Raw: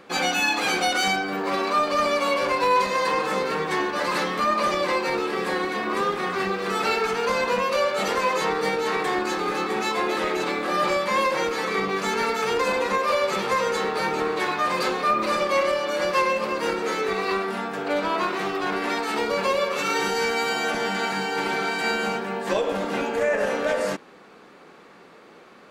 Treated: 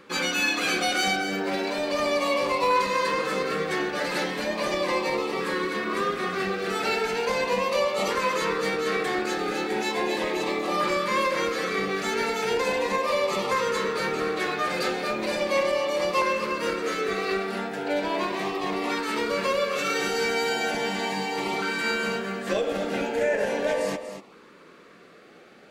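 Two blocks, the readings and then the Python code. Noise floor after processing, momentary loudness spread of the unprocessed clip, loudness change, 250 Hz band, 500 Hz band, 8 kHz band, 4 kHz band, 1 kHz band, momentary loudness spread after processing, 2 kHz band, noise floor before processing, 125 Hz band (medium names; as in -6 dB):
-51 dBFS, 4 LU, -2.0 dB, -1.0 dB, -1.5 dB, -1.0 dB, -1.0 dB, -4.0 dB, 4 LU, -2.0 dB, -49 dBFS, -1.0 dB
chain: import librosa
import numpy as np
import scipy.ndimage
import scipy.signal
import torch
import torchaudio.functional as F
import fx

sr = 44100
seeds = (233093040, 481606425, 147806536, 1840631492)

y = x + 10.0 ** (-10.0 / 20.0) * np.pad(x, (int(240 * sr / 1000.0), 0))[:len(x)]
y = fx.filter_lfo_notch(y, sr, shape='saw_up', hz=0.37, low_hz=700.0, high_hz=1600.0, q=2.6)
y = y * 10.0 ** (-1.5 / 20.0)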